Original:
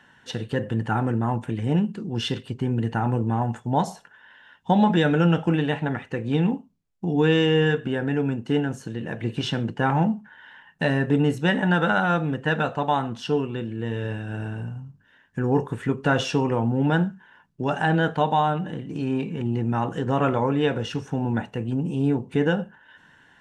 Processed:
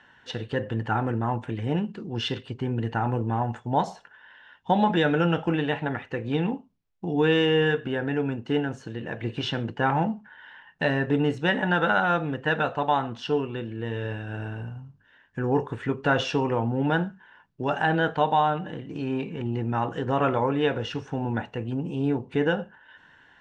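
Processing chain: low-pass 4.8 kHz 12 dB/octave; peaking EQ 180 Hz -6 dB 1.3 oct

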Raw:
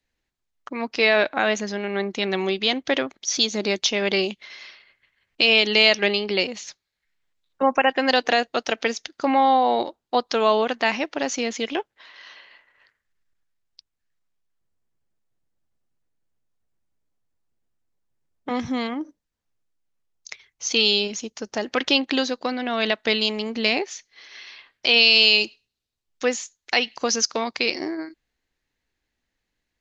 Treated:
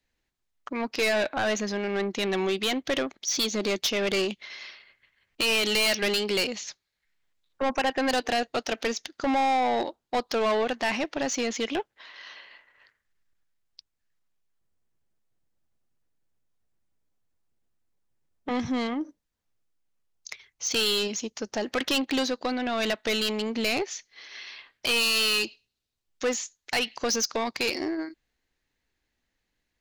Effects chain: 5.63–6.55 s: treble shelf 4.5 kHz +10 dB; saturation -20.5 dBFS, distortion -6 dB

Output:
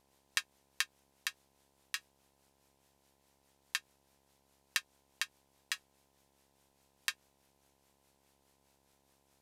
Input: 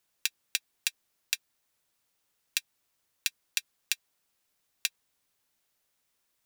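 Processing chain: peak limiter -12 dBFS, peak gain reduction 9 dB; rotary cabinet horn 7 Hz; mains buzz 100 Hz, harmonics 15, -80 dBFS -1 dB/octave; wide varispeed 0.685×; trim +4.5 dB

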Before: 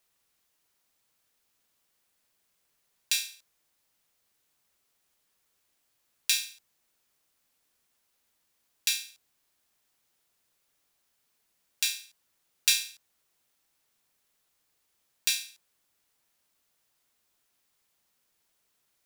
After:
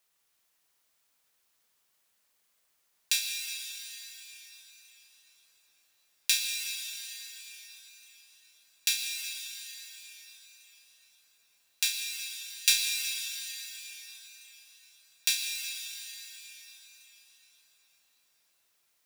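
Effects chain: bass shelf 430 Hz -7 dB; reverberation RT60 5.0 s, pre-delay 98 ms, DRR 2.5 dB

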